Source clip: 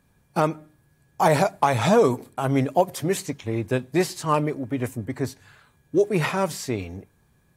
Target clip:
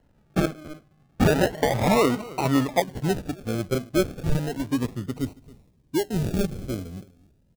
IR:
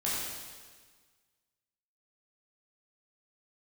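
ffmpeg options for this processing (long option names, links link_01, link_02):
-af "aecho=1:1:276:0.0944,flanger=delay=2.8:depth=3.1:regen=36:speed=1.5:shape=triangular,acrusher=samples=37:mix=1:aa=0.000001:lfo=1:lforange=22.2:lforate=0.33,lowshelf=frequency=400:gain=7,alimiter=limit=-11dB:level=0:latency=1:release=222,asetnsamples=nb_out_samples=441:pad=0,asendcmd='2.8 equalizer g -3;5.19 equalizer g -9',equalizer=frequency=1200:width=0.48:gain=4"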